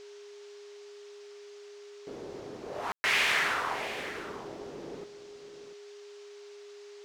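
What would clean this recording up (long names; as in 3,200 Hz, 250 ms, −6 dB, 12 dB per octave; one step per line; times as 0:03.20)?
notch filter 410 Hz, Q 30
ambience match 0:02.92–0:03.04
noise reduction from a noise print 29 dB
echo removal 693 ms −13 dB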